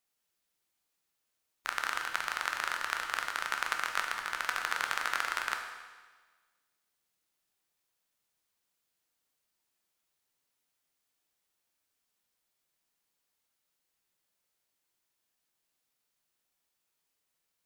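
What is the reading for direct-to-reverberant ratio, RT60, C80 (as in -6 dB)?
3.0 dB, 1.4 s, 6.5 dB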